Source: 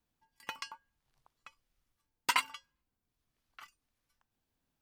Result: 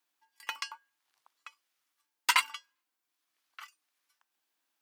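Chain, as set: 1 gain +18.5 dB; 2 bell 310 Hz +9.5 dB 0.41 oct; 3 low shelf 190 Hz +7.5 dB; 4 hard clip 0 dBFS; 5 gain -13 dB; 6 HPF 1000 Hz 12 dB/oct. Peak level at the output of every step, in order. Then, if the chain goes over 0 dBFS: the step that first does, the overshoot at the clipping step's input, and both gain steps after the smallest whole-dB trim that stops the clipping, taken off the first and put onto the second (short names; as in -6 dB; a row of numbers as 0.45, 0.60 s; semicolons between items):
+5.5, +6.0, +6.5, 0.0, -13.0, -9.5 dBFS; step 1, 6.5 dB; step 1 +11.5 dB, step 5 -6 dB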